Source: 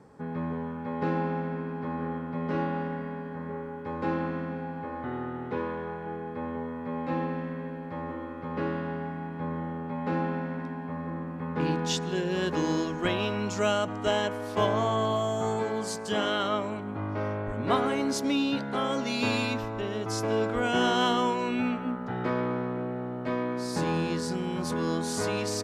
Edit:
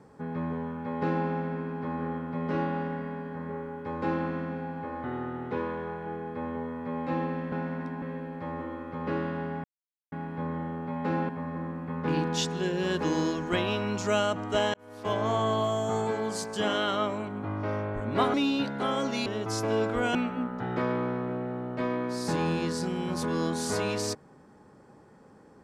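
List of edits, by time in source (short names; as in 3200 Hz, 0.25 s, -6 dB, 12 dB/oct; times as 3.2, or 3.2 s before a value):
9.14 insert silence 0.48 s
10.31–10.81 move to 7.52
14.26–14.87 fade in
17.86–18.27 cut
19.19–19.86 cut
20.75–21.63 cut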